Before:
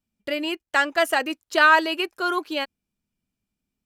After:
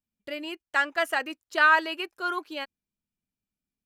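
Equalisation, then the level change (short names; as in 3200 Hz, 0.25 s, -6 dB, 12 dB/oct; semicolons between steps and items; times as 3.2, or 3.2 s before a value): dynamic EQ 1600 Hz, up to +6 dB, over -29 dBFS, Q 0.71; -9.0 dB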